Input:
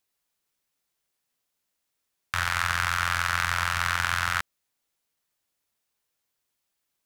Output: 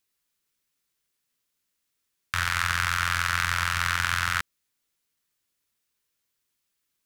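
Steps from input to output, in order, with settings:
parametric band 720 Hz −8 dB 0.91 octaves
level +1.5 dB

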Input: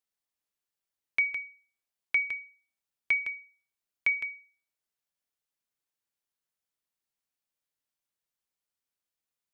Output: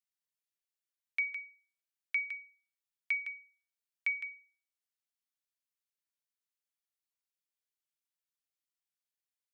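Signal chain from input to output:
high-pass filter 1,500 Hz 12 dB per octave
level −5.5 dB

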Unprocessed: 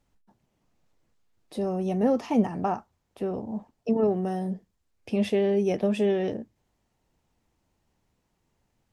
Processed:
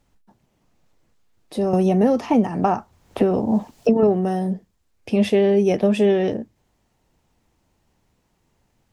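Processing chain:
0:01.73–0:04.03: multiband upward and downward compressor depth 100%
level +7 dB

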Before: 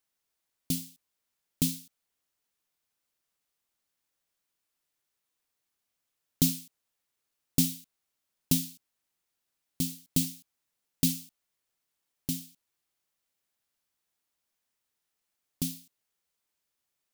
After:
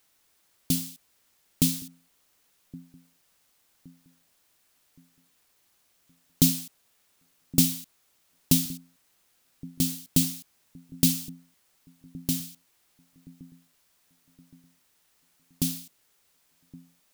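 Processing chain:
mu-law and A-law mismatch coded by mu
delay with a low-pass on its return 1,119 ms, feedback 42%, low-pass 450 Hz, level −18 dB
level +4 dB

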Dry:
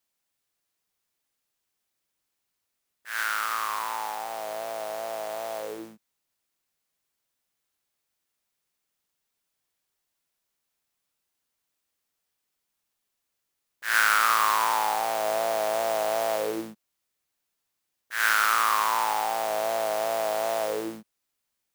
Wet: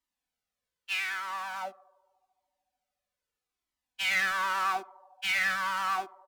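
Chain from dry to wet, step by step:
low-pass filter 2,700 Hz 6 dB per octave
low-shelf EQ 170 Hz +4 dB
comb filter 6.9 ms, depth 35%
brickwall limiter −15.5 dBFS, peak gain reduction 6.5 dB
phase-vocoder stretch with locked phases 0.5×
asymmetric clip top −23.5 dBFS
on a send: feedback echo with a band-pass in the loop 127 ms, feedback 80%, band-pass 370 Hz, level −21 dB
on the sum: wrong playback speed 45 rpm record played at 78 rpm
flanger whose copies keep moving one way falling 0.81 Hz
level +3.5 dB

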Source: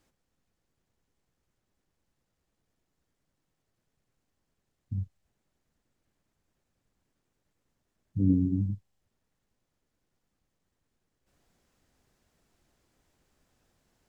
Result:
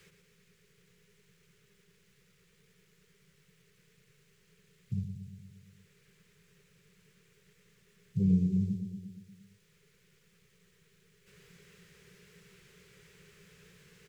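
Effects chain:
drawn EQ curve 100 Hz 0 dB, 180 Hz +10 dB, 290 Hz −25 dB, 410 Hz +10 dB, 700 Hz −18 dB, 1,200 Hz −2 dB, 2,300 Hz +11 dB
repeating echo 117 ms, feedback 56%, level −8 dB
multiband upward and downward compressor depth 40%

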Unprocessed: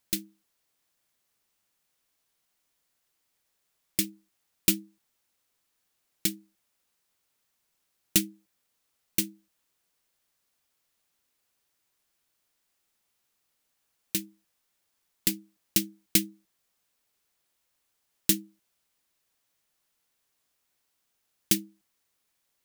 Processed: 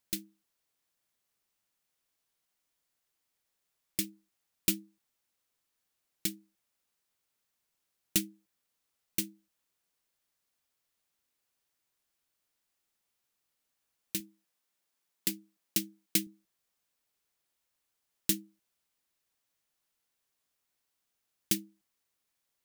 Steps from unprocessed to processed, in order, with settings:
0:14.20–0:16.27: high-pass filter 140 Hz
level −5.5 dB

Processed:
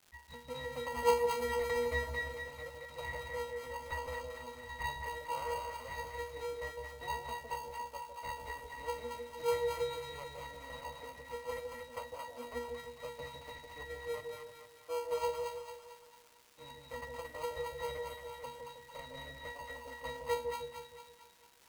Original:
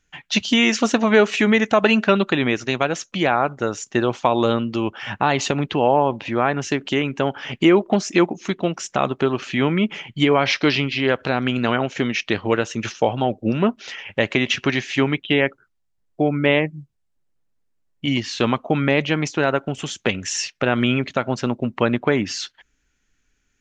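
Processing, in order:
phase distortion by the signal itself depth 0.71 ms
high-pass filter 550 Hz 24 dB per octave
high-shelf EQ 3,500 Hz −7.5 dB
resonances in every octave A, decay 0.42 s
in parallel at −3.5 dB: decimation without filtering 26×
on the sum: surface crackle 310 per second −50 dBFS
echo with a time of its own for lows and highs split 720 Hz, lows 170 ms, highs 244 ms, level −3.5 dB
wrong playback speed 44.1 kHz file played as 48 kHz
level +1 dB

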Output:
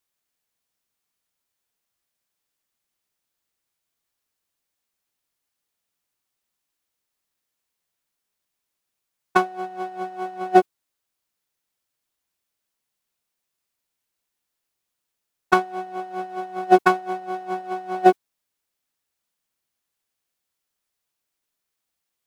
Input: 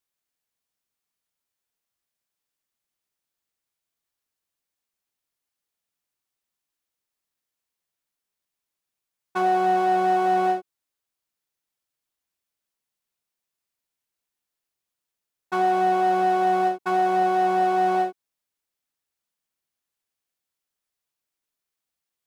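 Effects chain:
compressor whose output falls as the input rises −27 dBFS, ratio −0.5
downward expander −13 dBFS
boost into a limiter +29.5 dB
level −1 dB

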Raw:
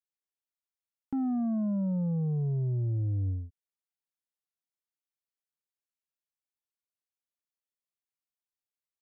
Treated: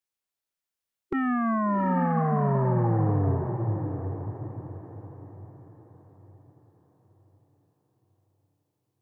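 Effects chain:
formants moved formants +6 semitones
feedback delay with all-pass diffusion 733 ms, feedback 40%, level −5 dB
level +5 dB

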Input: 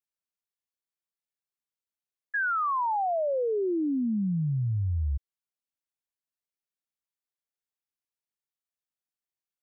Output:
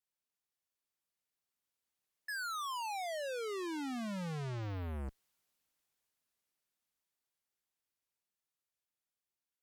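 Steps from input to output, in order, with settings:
source passing by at 0:04.35, 8 m/s, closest 3.2 metres
harmonic generator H 5 −15 dB, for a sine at −56 dBFS
level +15.5 dB

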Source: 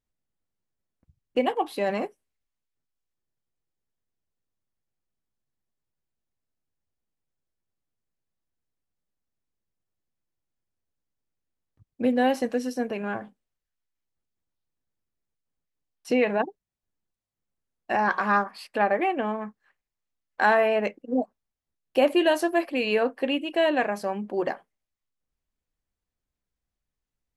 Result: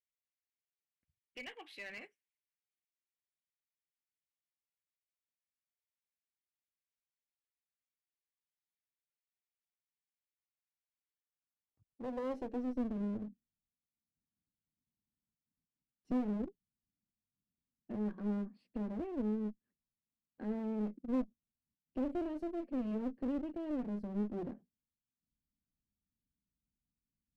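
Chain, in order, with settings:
guitar amp tone stack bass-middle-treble 10-0-1
in parallel at +1 dB: brickwall limiter −45.5 dBFS, peak gain reduction 11.5 dB
on the sum: band-pass filter sweep 2,100 Hz → 230 Hz, 0:11.04–0:12.93
asymmetric clip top −57.5 dBFS, bottom −38 dBFS
level +14 dB

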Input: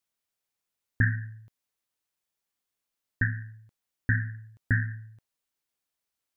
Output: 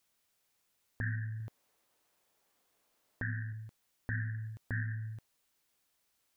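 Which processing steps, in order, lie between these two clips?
0:01.40–0:03.53: parametric band 560 Hz +9 dB 2.6 octaves
downward compressor 5 to 1, threshold −39 dBFS, peak gain reduction 18 dB
brickwall limiter −34.5 dBFS, peak gain reduction 11.5 dB
level +8.5 dB

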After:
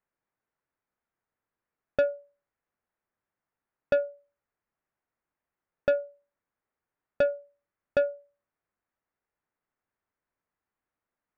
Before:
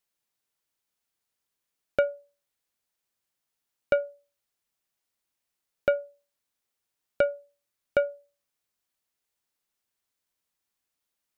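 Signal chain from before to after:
low-pass filter 1,900 Hz 24 dB per octave
soft clipping −19.5 dBFS, distortion −12 dB
level +3 dB

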